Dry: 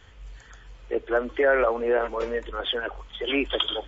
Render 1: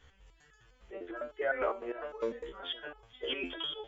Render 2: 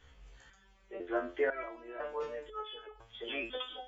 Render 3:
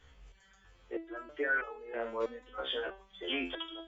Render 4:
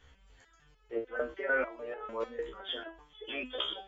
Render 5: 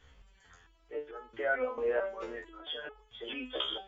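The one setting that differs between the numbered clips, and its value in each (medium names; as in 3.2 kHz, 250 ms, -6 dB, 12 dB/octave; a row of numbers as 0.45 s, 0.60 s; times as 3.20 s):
resonator arpeggio, rate: 9.9 Hz, 2 Hz, 3.1 Hz, 6.7 Hz, 4.5 Hz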